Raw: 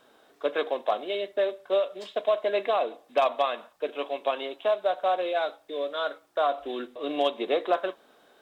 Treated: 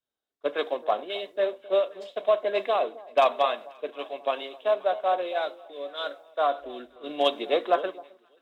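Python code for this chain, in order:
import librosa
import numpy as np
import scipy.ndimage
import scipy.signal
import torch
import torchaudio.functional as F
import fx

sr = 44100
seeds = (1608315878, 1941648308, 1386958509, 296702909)

y = fx.echo_alternate(x, sr, ms=266, hz=1000.0, feedback_pct=67, wet_db=-12.5)
y = fx.band_widen(y, sr, depth_pct=100)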